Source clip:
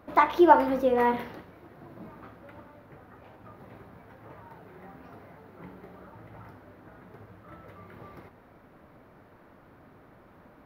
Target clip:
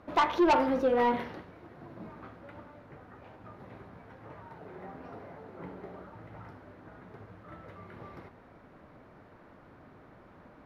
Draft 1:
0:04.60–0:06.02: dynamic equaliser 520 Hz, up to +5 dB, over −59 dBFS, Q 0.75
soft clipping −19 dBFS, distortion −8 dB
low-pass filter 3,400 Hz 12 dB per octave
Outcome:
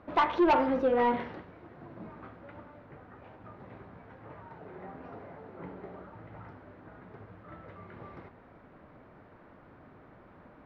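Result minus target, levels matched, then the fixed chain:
8,000 Hz band −10.0 dB
0:04.60–0:06.02: dynamic equaliser 520 Hz, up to +5 dB, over −59 dBFS, Q 0.75
soft clipping −19 dBFS, distortion −8 dB
low-pass filter 8,000 Hz 12 dB per octave

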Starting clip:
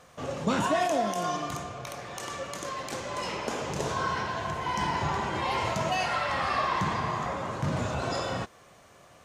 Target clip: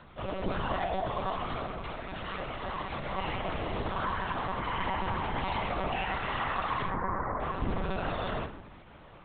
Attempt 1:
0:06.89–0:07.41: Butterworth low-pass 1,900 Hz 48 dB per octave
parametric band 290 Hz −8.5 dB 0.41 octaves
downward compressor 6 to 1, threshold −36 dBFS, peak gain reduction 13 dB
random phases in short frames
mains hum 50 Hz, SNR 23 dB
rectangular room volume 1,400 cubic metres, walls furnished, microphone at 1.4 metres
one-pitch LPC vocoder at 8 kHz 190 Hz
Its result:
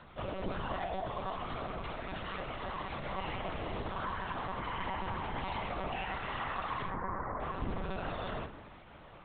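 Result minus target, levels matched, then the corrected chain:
downward compressor: peak gain reduction +5.5 dB
0:06.89–0:07.41: Butterworth low-pass 1,900 Hz 48 dB per octave
parametric band 290 Hz −8.5 dB 0.41 octaves
downward compressor 6 to 1, threshold −29.5 dBFS, peak gain reduction 7.5 dB
random phases in short frames
mains hum 50 Hz, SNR 23 dB
rectangular room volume 1,400 cubic metres, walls furnished, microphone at 1.4 metres
one-pitch LPC vocoder at 8 kHz 190 Hz

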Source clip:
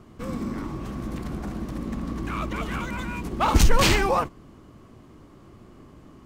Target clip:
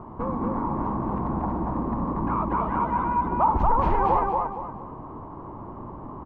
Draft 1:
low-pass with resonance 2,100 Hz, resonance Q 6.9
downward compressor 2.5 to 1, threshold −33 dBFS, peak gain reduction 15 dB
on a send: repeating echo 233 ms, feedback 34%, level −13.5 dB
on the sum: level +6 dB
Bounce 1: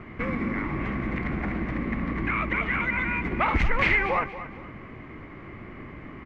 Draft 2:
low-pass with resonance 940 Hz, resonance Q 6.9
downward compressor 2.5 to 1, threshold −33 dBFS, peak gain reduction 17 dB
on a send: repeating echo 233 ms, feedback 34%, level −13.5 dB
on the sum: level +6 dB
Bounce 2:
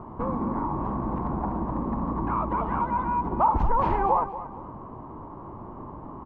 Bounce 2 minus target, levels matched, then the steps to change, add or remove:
echo-to-direct −10.5 dB
change: repeating echo 233 ms, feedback 34%, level −3 dB

